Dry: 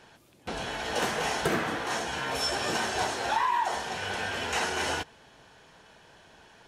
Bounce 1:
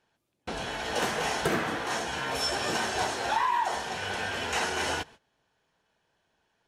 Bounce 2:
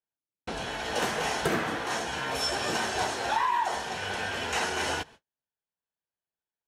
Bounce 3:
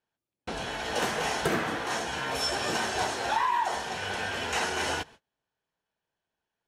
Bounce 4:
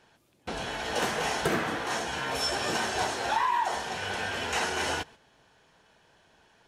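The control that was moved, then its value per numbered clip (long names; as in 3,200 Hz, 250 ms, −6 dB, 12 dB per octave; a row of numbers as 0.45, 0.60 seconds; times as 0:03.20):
noise gate, range: −19, −45, −32, −7 decibels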